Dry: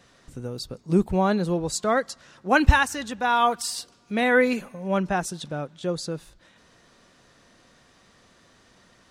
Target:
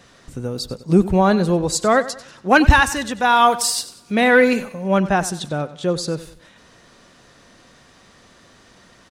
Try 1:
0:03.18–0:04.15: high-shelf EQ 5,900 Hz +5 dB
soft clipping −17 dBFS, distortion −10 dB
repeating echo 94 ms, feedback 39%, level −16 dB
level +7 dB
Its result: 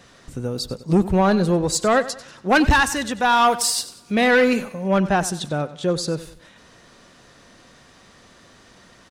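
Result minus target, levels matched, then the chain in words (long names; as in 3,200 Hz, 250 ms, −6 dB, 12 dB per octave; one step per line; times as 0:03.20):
soft clipping: distortion +9 dB
0:03.18–0:04.15: high-shelf EQ 5,900 Hz +5 dB
soft clipping −8 dBFS, distortion −19 dB
repeating echo 94 ms, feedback 39%, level −16 dB
level +7 dB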